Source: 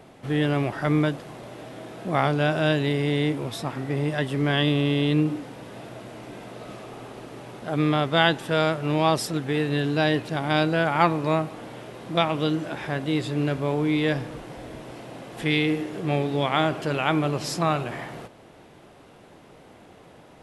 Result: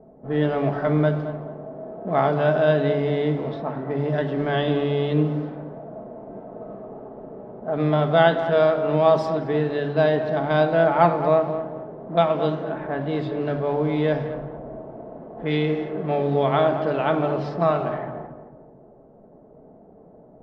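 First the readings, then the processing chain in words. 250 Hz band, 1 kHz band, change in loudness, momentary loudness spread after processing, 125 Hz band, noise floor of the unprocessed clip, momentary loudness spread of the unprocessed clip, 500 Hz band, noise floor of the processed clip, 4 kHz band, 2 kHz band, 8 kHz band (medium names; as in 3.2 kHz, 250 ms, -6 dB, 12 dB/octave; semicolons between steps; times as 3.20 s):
-0.5 dB, +2.5 dB, +2.0 dB, 19 LU, +0.5 dB, -50 dBFS, 18 LU, +6.0 dB, -50 dBFS, -7.0 dB, -2.5 dB, under -20 dB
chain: distance through air 230 m; simulated room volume 2400 m³, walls furnished, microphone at 1.5 m; level-controlled noise filter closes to 490 Hz, open at -19 dBFS; fifteen-band graphic EQ 100 Hz -8 dB, 630 Hz +6 dB, 2.5 kHz -6 dB; on a send: filtered feedback delay 219 ms, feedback 38%, low-pass 1.3 kHz, level -9 dB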